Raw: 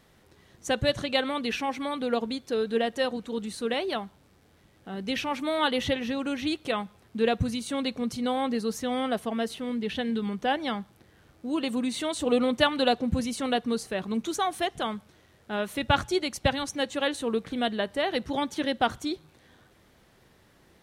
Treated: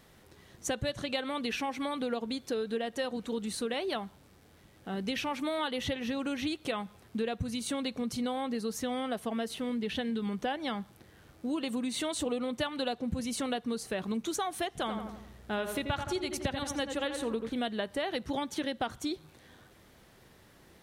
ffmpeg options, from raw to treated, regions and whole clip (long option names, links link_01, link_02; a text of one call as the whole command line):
ffmpeg -i in.wav -filter_complex "[0:a]asettb=1/sr,asplit=3[link_01][link_02][link_03];[link_01]atrim=end=14.784[link_04];[link_02]atrim=start=14.78:end=17.5,asetpts=PTS-STARTPTS,afade=type=in:duration=0.004:curve=qsin,afade=type=out:start_time=2.716:duration=0.004:curve=qsin,aeval=exprs='val(0)+0.00158*(sin(2*PI*60*n/s)+sin(2*PI*2*60*n/s)/2+sin(2*PI*3*60*n/s)/3+sin(2*PI*4*60*n/s)/4+sin(2*PI*5*60*n/s)/5)':channel_layout=same,asplit=2[link_05][link_06];[link_06]adelay=85,lowpass=frequency=1900:poles=1,volume=-6.5dB,asplit=2[link_07][link_08];[link_08]adelay=85,lowpass=frequency=1900:poles=1,volume=0.51,asplit=2[link_09][link_10];[link_10]adelay=85,lowpass=frequency=1900:poles=1,volume=0.51,asplit=2[link_11][link_12];[link_12]adelay=85,lowpass=frequency=1900:poles=1,volume=0.51,asplit=2[link_13][link_14];[link_14]adelay=85,lowpass=frequency=1900:poles=1,volume=0.51,asplit=2[link_15][link_16];[link_16]adelay=85,lowpass=frequency=1900:poles=1,volume=0.51[link_17];[link_05][link_07][link_09][link_11][link_13][link_15][link_17]amix=inputs=7:normalize=0,atrim=end_sample=119952[link_18];[link_03]atrim=start=17.496[link_19];[link_04][link_18]acrossfade=duration=0.004:curve1=hsin:curve2=qsin[link_20];[link_20][link_19]acrossfade=duration=0.004:curve1=qsin:curve2=hsin,acompressor=threshold=-31dB:ratio=6,highshelf=frequency=8800:gain=4,volume=1dB" out.wav